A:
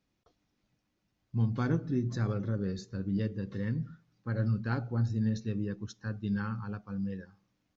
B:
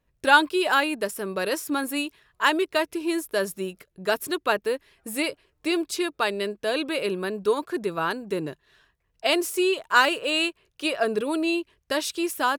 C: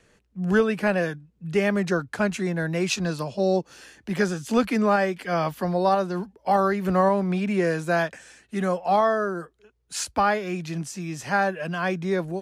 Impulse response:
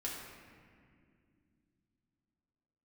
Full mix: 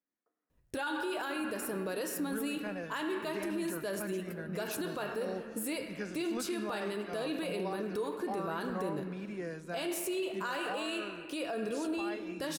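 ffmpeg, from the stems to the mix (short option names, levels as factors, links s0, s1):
-filter_complex "[0:a]highpass=f=230:w=0.5412,highpass=f=230:w=1.3066,highshelf=f=2500:t=q:w=3:g=-11.5,volume=0.158,asplit=2[s0][s1];[s1]volume=0.668[s2];[1:a]adelay=500,volume=0.891,asplit=2[s3][s4];[s4]volume=0.211[s5];[2:a]adelay=1800,volume=0.126,asplit=2[s6][s7];[s7]volume=0.15[s8];[s0][s3]amix=inputs=2:normalize=0,equalizer=f=2200:w=0.44:g=-9,acompressor=threshold=0.0251:ratio=6,volume=1[s9];[3:a]atrim=start_sample=2205[s10];[s2][s5][s8]amix=inputs=3:normalize=0[s11];[s11][s10]afir=irnorm=-1:irlink=0[s12];[s6][s9][s12]amix=inputs=3:normalize=0,alimiter=level_in=1.5:limit=0.0631:level=0:latency=1:release=25,volume=0.668"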